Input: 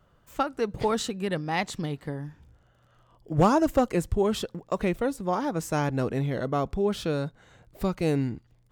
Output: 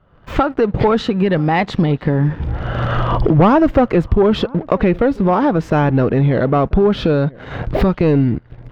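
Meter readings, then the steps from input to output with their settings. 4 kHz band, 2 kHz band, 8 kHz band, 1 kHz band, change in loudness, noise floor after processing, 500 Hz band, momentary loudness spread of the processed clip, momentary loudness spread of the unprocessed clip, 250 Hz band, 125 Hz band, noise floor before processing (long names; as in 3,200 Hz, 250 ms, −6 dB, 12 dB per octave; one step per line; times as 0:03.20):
+8.0 dB, +11.0 dB, can't be measured, +11.0 dB, +12.0 dB, −44 dBFS, +12.0 dB, 7 LU, 10 LU, +13.0 dB, +14.5 dB, −63 dBFS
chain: camcorder AGC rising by 38 dB per second
leveller curve on the samples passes 2
in parallel at +0.5 dB: downward compressor, threshold −28 dBFS, peak gain reduction 14 dB
on the sum: high-frequency loss of the air 320 metres
slap from a distant wall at 170 metres, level −23 dB
level +4 dB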